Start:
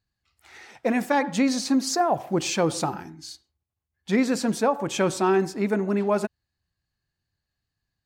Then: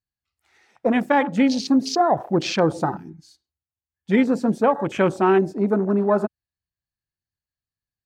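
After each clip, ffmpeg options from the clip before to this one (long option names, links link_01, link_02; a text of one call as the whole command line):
ffmpeg -i in.wav -af "afwtdn=0.0251,volume=4dB" out.wav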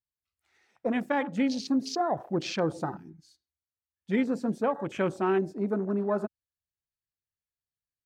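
ffmpeg -i in.wav -af "equalizer=frequency=860:width_type=o:width=0.58:gain=-2.5,volume=-8.5dB" out.wav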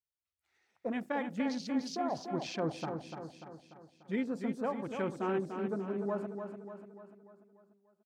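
ffmpeg -i in.wav -af "aecho=1:1:294|588|882|1176|1470|1764:0.447|0.237|0.125|0.0665|0.0352|0.0187,volume=-7.5dB" out.wav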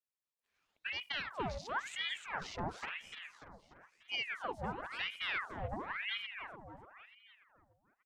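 ffmpeg -i in.wav -af "aeval=exprs='val(0)*sin(2*PI*1500*n/s+1500*0.8/0.97*sin(2*PI*0.97*n/s))':channel_layout=same,volume=-2.5dB" out.wav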